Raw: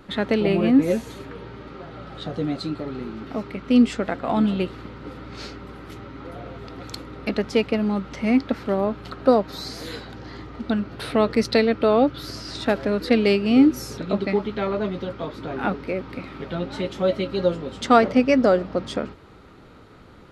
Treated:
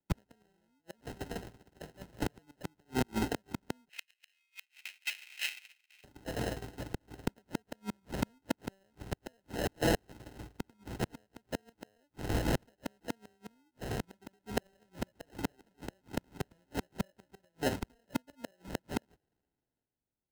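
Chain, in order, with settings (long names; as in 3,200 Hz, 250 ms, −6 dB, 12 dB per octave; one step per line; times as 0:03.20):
noise gate −34 dBFS, range −39 dB
downward compressor 6 to 1, threshold −34 dBFS, peak gain reduction 23 dB
decimation without filtering 38×
0:03.89–0:06.04: high-pass with resonance 2,400 Hz, resonance Q 7.3
gate with flip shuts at −29 dBFS, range −39 dB
multiband upward and downward expander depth 40%
level +8 dB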